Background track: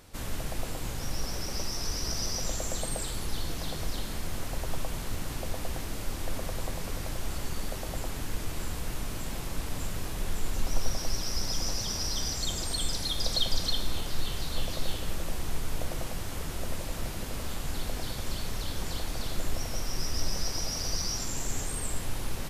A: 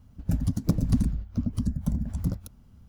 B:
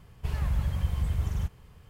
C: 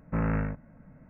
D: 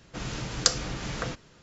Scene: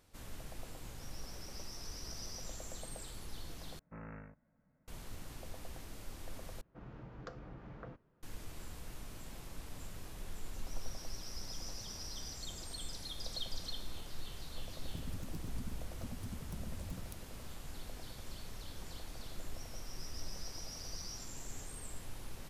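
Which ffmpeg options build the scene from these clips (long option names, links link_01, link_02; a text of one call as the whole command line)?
ffmpeg -i bed.wav -i cue0.wav -i cue1.wav -i cue2.wav -i cue3.wav -filter_complex "[0:a]volume=-13.5dB[link_01];[3:a]lowshelf=frequency=300:gain=-6[link_02];[4:a]lowpass=1200[link_03];[1:a]acompressor=threshold=-35dB:ratio=6:attack=3.2:release=140:knee=1:detection=peak[link_04];[link_01]asplit=3[link_05][link_06][link_07];[link_05]atrim=end=3.794[link_08];[link_02]atrim=end=1.09,asetpts=PTS-STARTPTS,volume=-17.5dB[link_09];[link_06]atrim=start=4.876:end=6.614[link_10];[link_03]atrim=end=1.62,asetpts=PTS-STARTPTS,volume=-15dB[link_11];[link_07]atrim=start=8.226[link_12];[link_04]atrim=end=2.88,asetpts=PTS-STARTPTS,volume=-6dB,afade=type=in:duration=0.004:curve=hsin,afade=type=out:start_time=2.876:duration=0.004:curve=hsin,adelay=14660[link_13];[link_08][link_09]acrossfade=duration=0.004:curve1=hsin:curve2=hsin[link_14];[link_14][link_10]acrossfade=duration=0.004:curve1=hsin:curve2=hsin[link_15];[link_15][link_11]acrossfade=duration=0.004:curve1=hsin:curve2=hsin[link_16];[link_16][link_12]acrossfade=duration=0.004:curve1=hsin:curve2=hsin[link_17];[link_17][link_13]amix=inputs=2:normalize=0" out.wav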